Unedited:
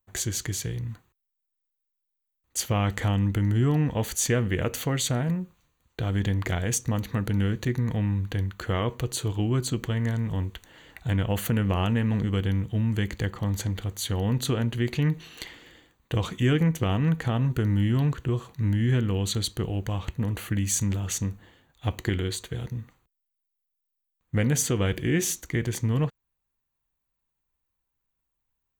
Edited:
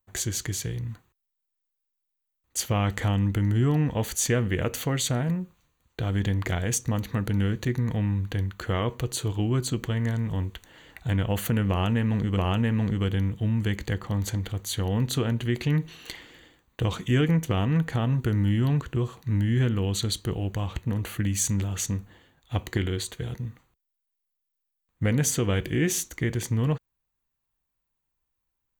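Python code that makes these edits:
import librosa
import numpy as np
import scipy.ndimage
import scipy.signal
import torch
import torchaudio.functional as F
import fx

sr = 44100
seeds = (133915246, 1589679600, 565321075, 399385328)

y = fx.edit(x, sr, fx.repeat(start_s=11.69, length_s=0.68, count=2), tone=tone)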